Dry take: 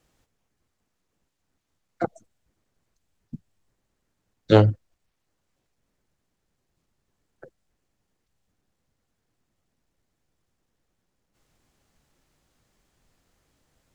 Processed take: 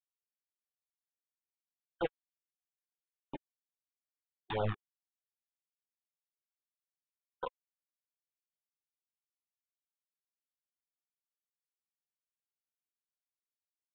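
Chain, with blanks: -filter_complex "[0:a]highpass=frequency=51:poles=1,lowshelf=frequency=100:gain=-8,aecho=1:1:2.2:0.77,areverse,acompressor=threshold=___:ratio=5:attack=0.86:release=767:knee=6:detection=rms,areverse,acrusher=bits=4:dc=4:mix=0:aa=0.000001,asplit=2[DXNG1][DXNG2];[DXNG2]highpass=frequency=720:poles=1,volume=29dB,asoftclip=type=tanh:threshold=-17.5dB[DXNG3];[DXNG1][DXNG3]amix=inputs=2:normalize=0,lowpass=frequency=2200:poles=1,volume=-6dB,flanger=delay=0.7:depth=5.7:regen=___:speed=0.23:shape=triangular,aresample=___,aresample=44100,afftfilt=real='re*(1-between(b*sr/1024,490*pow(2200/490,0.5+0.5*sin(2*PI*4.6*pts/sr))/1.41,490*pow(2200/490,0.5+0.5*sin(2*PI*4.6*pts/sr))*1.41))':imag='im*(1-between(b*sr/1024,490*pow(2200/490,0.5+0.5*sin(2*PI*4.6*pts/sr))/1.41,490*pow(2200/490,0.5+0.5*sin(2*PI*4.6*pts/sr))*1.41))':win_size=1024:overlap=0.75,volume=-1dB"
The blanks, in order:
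-22dB, 25, 8000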